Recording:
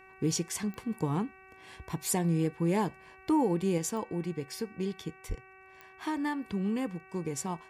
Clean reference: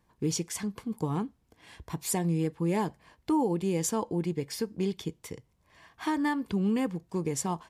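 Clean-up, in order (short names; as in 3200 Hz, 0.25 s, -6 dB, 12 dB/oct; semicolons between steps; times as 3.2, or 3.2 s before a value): de-click; de-hum 380 Hz, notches 7; de-plosive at 5.28; gain correction +4 dB, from 3.78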